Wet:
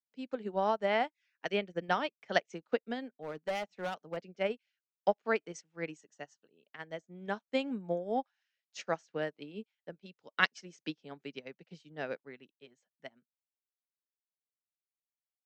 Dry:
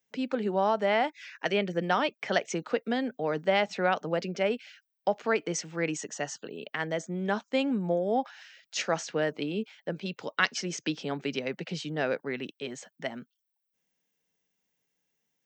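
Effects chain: 3.06–4.17 hard clip -23.5 dBFS, distortion -17 dB; upward expander 2.5:1, over -43 dBFS

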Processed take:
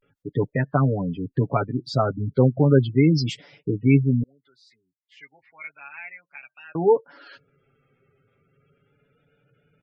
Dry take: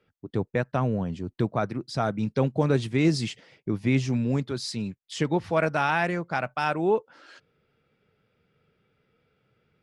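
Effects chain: spectral gate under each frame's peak -20 dB strong; 4.25–6.76 band-pass 2200 Hz, Q 13; comb 7.2 ms, depth 77%; vibrato 0.34 Hz 79 cents; gain +2.5 dB

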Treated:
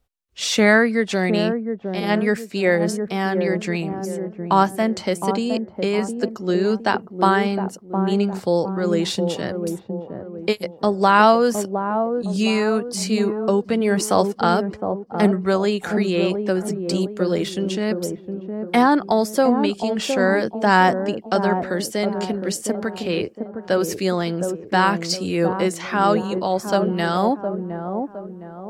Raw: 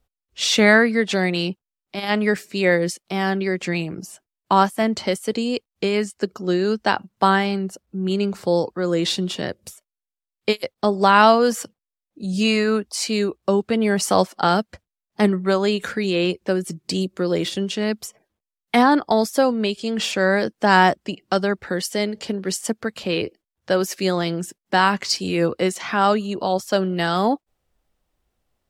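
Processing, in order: dynamic EQ 3400 Hz, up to -4 dB, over -34 dBFS, Q 1; on a send: dark delay 0.712 s, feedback 39%, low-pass 780 Hz, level -5 dB

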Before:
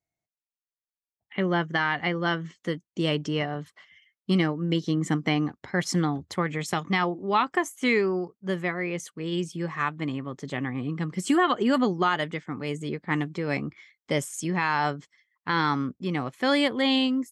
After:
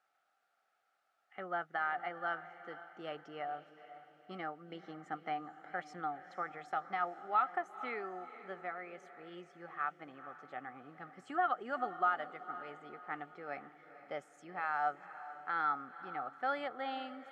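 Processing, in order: requantised 10-bit, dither triangular; double band-pass 1000 Hz, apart 0.78 oct; diffused feedback echo 0.476 s, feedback 44%, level -13.5 dB; gain -2.5 dB

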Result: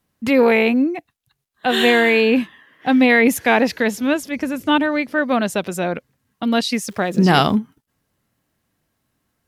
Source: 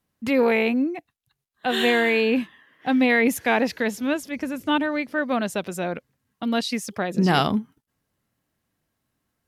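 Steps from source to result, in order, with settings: 6.87–7.54 crackle 500/s -44 dBFS; gain +5.5 dB

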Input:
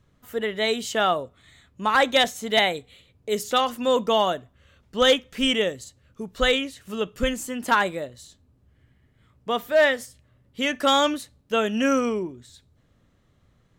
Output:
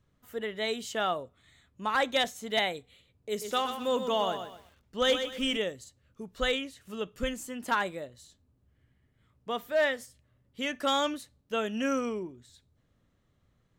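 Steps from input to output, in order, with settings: 3.29–5.57 lo-fi delay 0.125 s, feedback 35%, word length 8-bit, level -8 dB; gain -8 dB

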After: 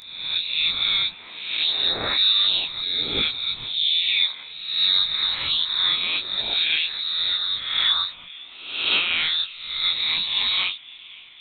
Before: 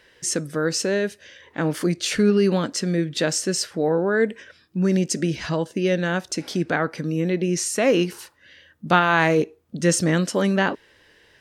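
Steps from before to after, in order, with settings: spectral swells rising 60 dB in 0.92 s; vocal rider 2 s; band-limited delay 0.52 s, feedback 76%, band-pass 880 Hz, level -19 dB; inverted band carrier 4000 Hz; detuned doubles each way 43 cents

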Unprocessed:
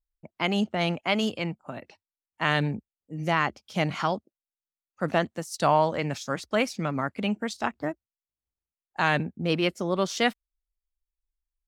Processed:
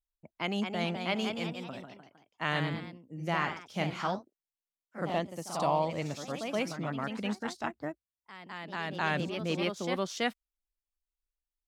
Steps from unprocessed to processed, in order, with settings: 5.05–6.88 bell 1500 Hz -12.5 dB 0.41 oct; echoes that change speed 0.243 s, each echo +1 st, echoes 3, each echo -6 dB; gain -7 dB

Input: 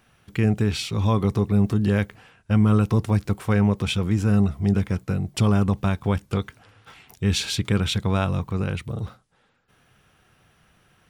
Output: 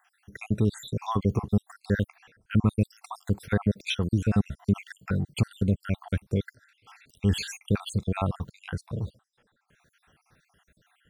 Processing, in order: random spectral dropouts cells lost 66%; 4.47–5.11 bell 1800 Hz +7 dB 1.9 oct; gain -1.5 dB

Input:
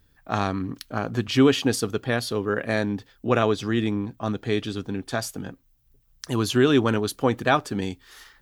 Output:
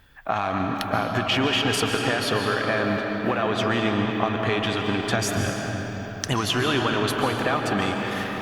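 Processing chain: 2.32–3.41 G.711 law mismatch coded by A; 5.14–6.33 fifteen-band EQ 100 Hz +12 dB, 1000 Hz -9 dB, 6300 Hz +7 dB; in parallel at -4 dB: hard clip -21 dBFS, distortion -7 dB; on the sum: band shelf 1400 Hz +10 dB 2.8 oct; limiter -6 dBFS, peak gain reduction 9.5 dB; compressor, threshold -21 dBFS, peak gain reduction 9.5 dB; reverb RT60 4.7 s, pre-delay 0.1 s, DRR 1 dB; Opus 64 kbps 48000 Hz

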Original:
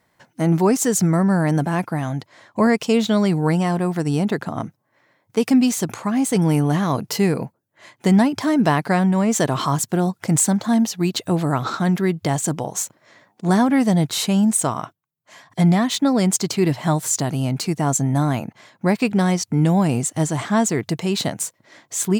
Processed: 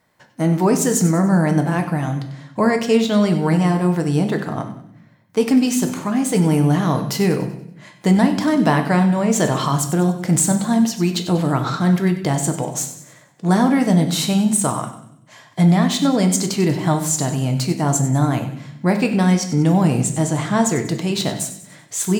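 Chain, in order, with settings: on a send: thin delay 95 ms, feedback 44%, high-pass 1900 Hz, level -12 dB; on the sum: shoebox room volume 150 m³, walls mixed, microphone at 0.5 m

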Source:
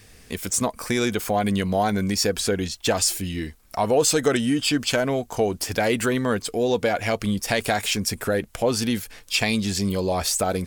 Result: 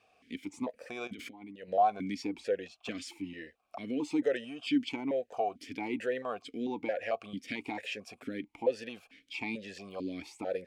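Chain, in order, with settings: 1.07–1.68 negative-ratio compressor -32 dBFS, ratio -1; 2.8–3.42 bell 1100 Hz +6 dB 0.75 oct; vowel sequencer 4.5 Hz

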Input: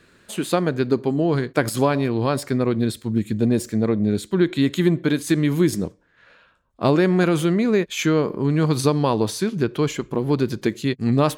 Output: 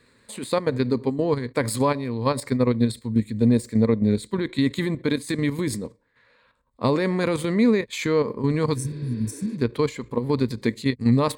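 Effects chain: level quantiser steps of 10 dB; ripple EQ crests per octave 0.97, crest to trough 9 dB; spectral repair 8.77–9.54, 240–5200 Hz after

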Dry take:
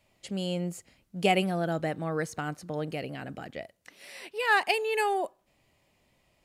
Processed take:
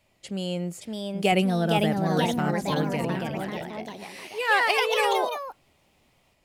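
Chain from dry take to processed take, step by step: 1.32–3.17 low shelf 190 Hz +9.5 dB; echoes that change speed 0.599 s, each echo +2 st, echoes 3; gain +1.5 dB

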